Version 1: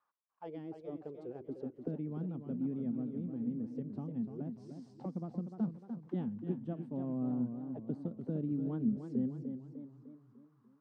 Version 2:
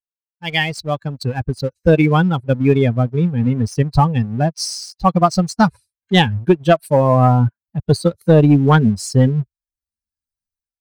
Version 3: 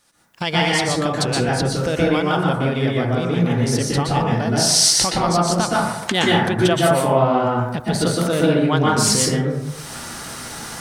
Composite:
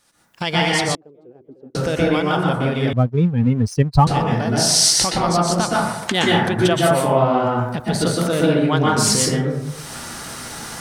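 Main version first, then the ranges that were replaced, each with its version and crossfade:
3
0.95–1.75 from 1
2.93–4.07 from 2

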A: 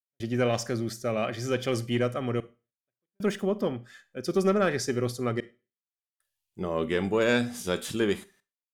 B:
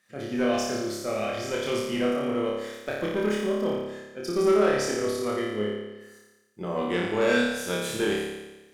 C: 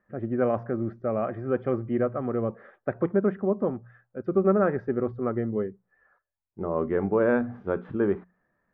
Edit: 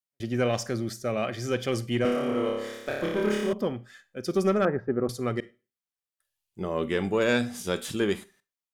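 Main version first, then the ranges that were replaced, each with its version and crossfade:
A
2.05–3.53 from B
4.65–5.09 from C

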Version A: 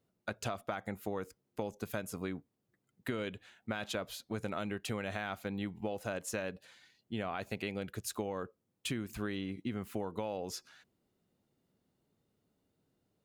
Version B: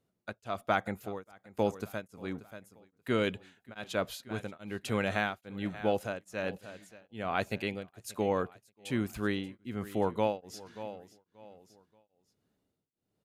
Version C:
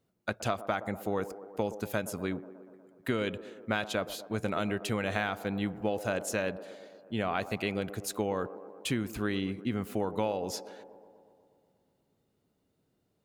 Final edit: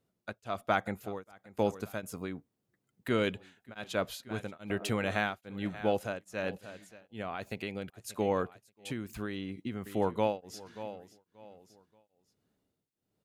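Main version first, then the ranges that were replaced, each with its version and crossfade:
B
2.03–3.1 from A
4.7–5.11 from C
7.22–7.9 from A
8.92–9.86 from A

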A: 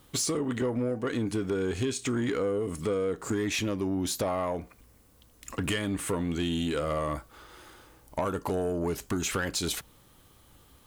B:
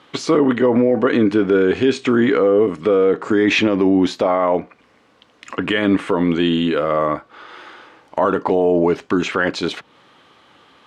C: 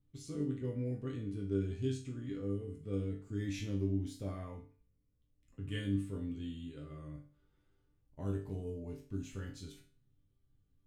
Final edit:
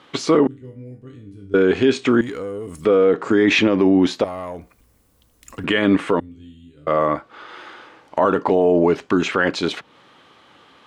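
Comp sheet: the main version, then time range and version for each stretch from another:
B
0.47–1.54 from C
2.21–2.85 from A
4.24–5.64 from A
6.2–6.87 from C

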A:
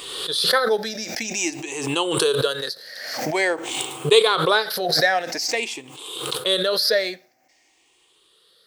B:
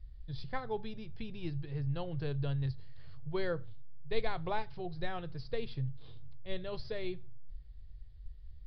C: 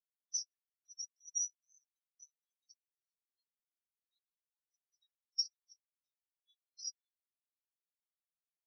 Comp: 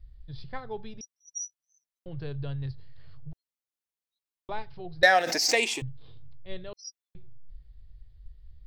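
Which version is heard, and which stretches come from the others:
B
1.01–2.06 from C
3.33–4.49 from C
5.03–5.82 from A
6.73–7.15 from C

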